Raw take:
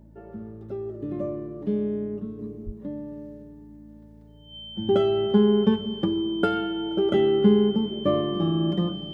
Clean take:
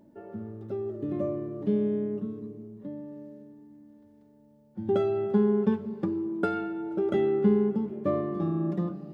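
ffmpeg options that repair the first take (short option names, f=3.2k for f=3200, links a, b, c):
-filter_complex "[0:a]bandreject=f=54.7:t=h:w=4,bandreject=f=109.4:t=h:w=4,bandreject=f=164.1:t=h:w=4,bandreject=f=218.8:t=h:w=4,bandreject=f=3.1k:w=30,asplit=3[a][b][c];[a]afade=t=out:st=2.65:d=0.02[d];[b]highpass=f=140:w=0.5412,highpass=f=140:w=1.3066,afade=t=in:st=2.65:d=0.02,afade=t=out:st=2.77:d=0.02[e];[c]afade=t=in:st=2.77:d=0.02[f];[d][e][f]amix=inputs=3:normalize=0,asetnsamples=n=441:p=0,asendcmd='2.39 volume volume -4.5dB',volume=0dB"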